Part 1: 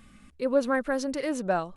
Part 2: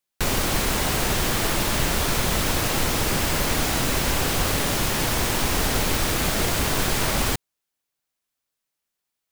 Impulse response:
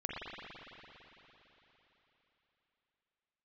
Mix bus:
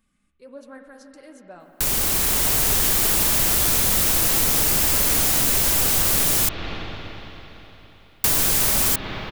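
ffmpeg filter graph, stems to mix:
-filter_complex "[0:a]flanger=delay=3.2:depth=8.5:regen=-46:speed=1.4:shape=triangular,volume=-16.5dB,asplit=3[link_01][link_02][link_03];[link_02]volume=-5dB[link_04];[1:a]highshelf=frequency=5700:gain=8,adelay=1600,volume=0.5dB,asplit=3[link_05][link_06][link_07];[link_05]atrim=end=6.49,asetpts=PTS-STARTPTS,afade=type=out:start_time=6.486:duration=0.004:curve=hsin[link_08];[link_06]atrim=start=6.49:end=8.24,asetpts=PTS-STARTPTS,volume=0[link_09];[link_07]atrim=start=8.24,asetpts=PTS-STARTPTS,afade=type=in:duration=0.004:curve=hsin[link_10];[link_08][link_09][link_10]concat=n=3:v=0:a=1,asplit=2[link_11][link_12];[link_12]volume=-7.5dB[link_13];[link_03]apad=whole_len=481241[link_14];[link_11][link_14]sidechaincompress=threshold=-54dB:ratio=8:attack=16:release=1230[link_15];[2:a]atrim=start_sample=2205[link_16];[link_04][link_13]amix=inputs=2:normalize=0[link_17];[link_17][link_16]afir=irnorm=-1:irlink=0[link_18];[link_01][link_15][link_18]amix=inputs=3:normalize=0,highshelf=frequency=5900:gain=8.5,acompressor=threshold=-19dB:ratio=2.5"

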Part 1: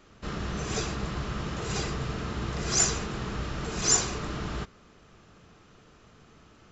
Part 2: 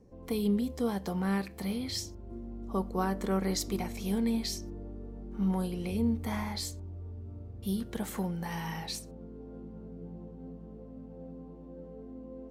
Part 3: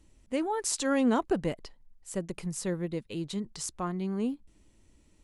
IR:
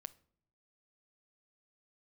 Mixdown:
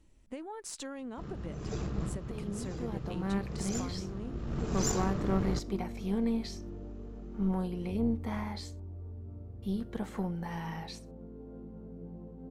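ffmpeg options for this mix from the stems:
-filter_complex "[0:a]tiltshelf=frequency=790:gain=8,adelay=950,volume=-5dB,asplit=2[link_01][link_02];[link_02]volume=-8.5dB[link_03];[1:a]acrossover=split=7800[link_04][link_05];[link_05]acompressor=threshold=-58dB:ratio=4:attack=1:release=60[link_06];[link_04][link_06]amix=inputs=2:normalize=0,highshelf=frequency=3200:gain=-11.5,dynaudnorm=framelen=780:gausssize=3:maxgain=12dB,adelay=2000,volume=-11dB[link_07];[2:a]highshelf=frequency=4800:gain=-7.5,acompressor=threshold=-37dB:ratio=8,volume=-0.5dB,asplit=2[link_08][link_09];[link_09]apad=whole_len=337841[link_10];[link_01][link_10]sidechaincompress=threshold=-54dB:ratio=8:attack=42:release=261[link_11];[3:a]atrim=start_sample=2205[link_12];[link_03][link_12]afir=irnorm=-1:irlink=0[link_13];[link_11][link_07][link_08][link_13]amix=inputs=4:normalize=0,highshelf=frequency=8100:gain=4,aeval=exprs='(tanh(10*val(0)+0.5)-tanh(0.5))/10':channel_layout=same"

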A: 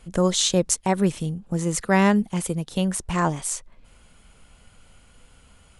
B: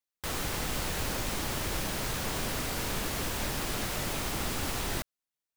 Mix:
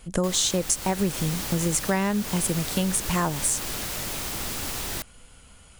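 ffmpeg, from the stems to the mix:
ffmpeg -i stem1.wav -i stem2.wav -filter_complex "[0:a]highshelf=frequency=5000:gain=6.5,volume=1.5dB[link_01];[1:a]highshelf=frequency=3400:gain=7.5,volume=-1.5dB[link_02];[link_01][link_02]amix=inputs=2:normalize=0,acompressor=threshold=-20dB:ratio=6" out.wav

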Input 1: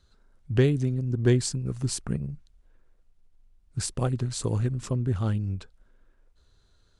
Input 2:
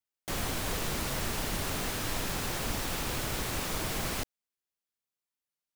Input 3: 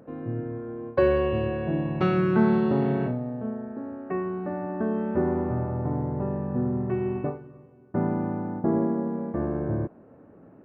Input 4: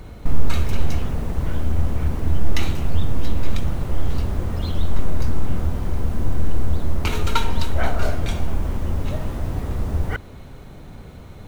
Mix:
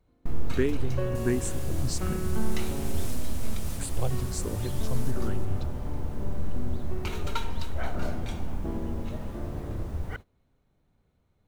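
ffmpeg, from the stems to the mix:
ffmpeg -i stem1.wav -i stem2.wav -i stem3.wav -i stem4.wav -filter_complex "[0:a]asubboost=boost=7:cutoff=51,asplit=2[link_01][link_02];[link_02]afreqshift=1.3[link_03];[link_01][link_03]amix=inputs=2:normalize=1,volume=-1.5dB,asplit=2[link_04][link_05];[1:a]equalizer=frequency=10000:width_type=o:width=1.9:gain=12.5,asplit=2[link_06][link_07];[link_07]adelay=5.4,afreqshift=-1.6[link_08];[link_06][link_08]amix=inputs=2:normalize=1,adelay=700,volume=-10dB,asplit=2[link_09][link_10];[link_10]volume=-7dB[link_11];[2:a]volume=-12.5dB[link_12];[3:a]volume=-10.5dB[link_13];[link_05]apad=whole_len=284914[link_14];[link_09][link_14]sidechaincompress=threshold=-52dB:ratio=8:attack=16:release=210[link_15];[link_11]aecho=0:1:171|342|513|684|855|1026|1197|1368:1|0.53|0.281|0.149|0.0789|0.0418|0.0222|0.0117[link_16];[link_04][link_15][link_12][link_13][link_16]amix=inputs=5:normalize=0,agate=range=-20dB:threshold=-39dB:ratio=16:detection=peak" out.wav

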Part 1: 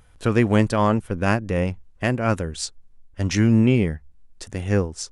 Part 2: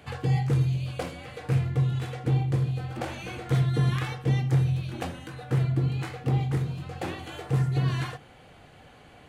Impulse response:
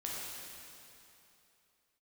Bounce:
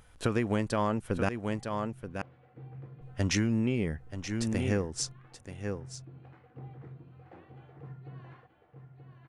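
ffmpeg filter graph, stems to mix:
-filter_complex "[0:a]volume=-1dB,asplit=3[link_01][link_02][link_03];[link_01]atrim=end=1.29,asetpts=PTS-STARTPTS,afade=type=out:start_time=1.286:duration=0.004:curve=hsin[link_04];[link_02]atrim=start=1.29:end=3.01,asetpts=PTS-STARTPTS,volume=0[link_05];[link_03]atrim=start=3.01,asetpts=PTS-STARTPTS,afade=type=in:duration=0.004:curve=hsin[link_06];[link_04][link_05][link_06]concat=n=3:v=0:a=1,asplit=3[link_07][link_08][link_09];[link_08]volume=-12.5dB[link_10];[1:a]lowpass=1700,adelay=300,volume=-18.5dB,asplit=2[link_11][link_12];[link_12]volume=-6.5dB[link_13];[link_09]apad=whole_len=422694[link_14];[link_11][link_14]sidechaincompress=threshold=-33dB:ratio=8:attack=16:release=1360[link_15];[link_10][link_13]amix=inputs=2:normalize=0,aecho=0:1:929:1[link_16];[link_07][link_15][link_16]amix=inputs=3:normalize=0,lowshelf=frequency=130:gain=-5,acompressor=threshold=-24dB:ratio=12"

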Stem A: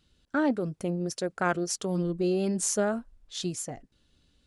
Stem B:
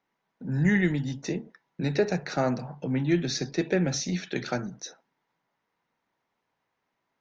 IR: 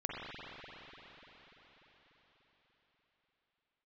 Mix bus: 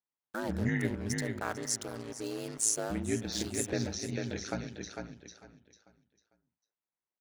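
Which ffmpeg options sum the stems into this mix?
-filter_complex "[0:a]bass=frequency=250:gain=-10,treble=frequency=4000:gain=10,acrusher=bits=5:mix=0:aa=0.5,volume=-7dB,asplit=3[link_01][link_02][link_03];[link_02]volume=-17dB[link_04];[link_03]volume=-14.5dB[link_05];[1:a]agate=range=-15dB:threshold=-44dB:ratio=16:detection=peak,volume=-5.5dB,asplit=3[link_06][link_07][link_08];[link_06]atrim=end=0.95,asetpts=PTS-STARTPTS,afade=type=out:start_time=0.946:duration=0.004:curve=hsin[link_09];[link_07]atrim=start=0.95:end=2.9,asetpts=PTS-STARTPTS,volume=0[link_10];[link_08]atrim=start=2.9,asetpts=PTS-STARTPTS,afade=type=in:duration=0.004:curve=hsin[link_11];[link_09][link_10][link_11]concat=n=3:v=0:a=1,asplit=2[link_12][link_13];[link_13]volume=-4.5dB[link_14];[2:a]atrim=start_sample=2205[link_15];[link_04][link_15]afir=irnorm=-1:irlink=0[link_16];[link_05][link_14]amix=inputs=2:normalize=0,aecho=0:1:448|896|1344|1792:1|0.28|0.0784|0.022[link_17];[link_01][link_12][link_16][link_17]amix=inputs=4:normalize=0,aeval=exprs='val(0)*sin(2*PI*55*n/s)':channel_layout=same"

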